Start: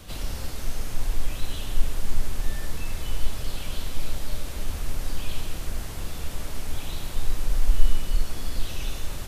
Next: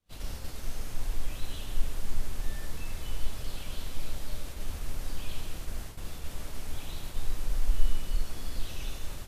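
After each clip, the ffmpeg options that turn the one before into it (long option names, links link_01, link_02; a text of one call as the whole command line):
ffmpeg -i in.wav -af "agate=range=-33dB:threshold=-27dB:ratio=3:detection=peak,volume=-6dB" out.wav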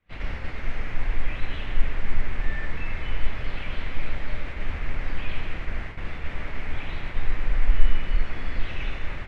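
ffmpeg -i in.wav -af "lowpass=frequency=2100:width_type=q:width=3.3,volume=6.5dB" out.wav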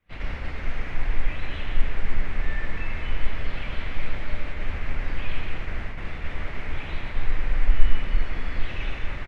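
ffmpeg -i in.wav -af "aecho=1:1:173:0.355" out.wav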